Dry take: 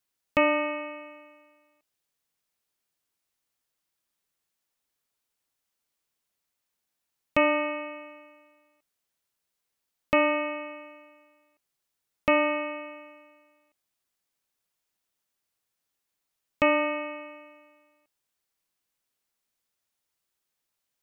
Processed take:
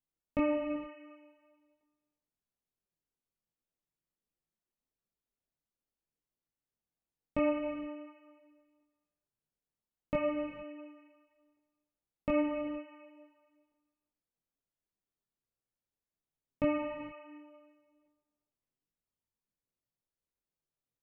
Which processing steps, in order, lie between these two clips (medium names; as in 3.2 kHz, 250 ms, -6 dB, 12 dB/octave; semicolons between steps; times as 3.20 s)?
chorus voices 6, 0.46 Hz, delay 21 ms, depth 4.1 ms; tilt shelf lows +9 dB, about 750 Hz; gated-style reverb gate 490 ms flat, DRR 10 dB; trim -7 dB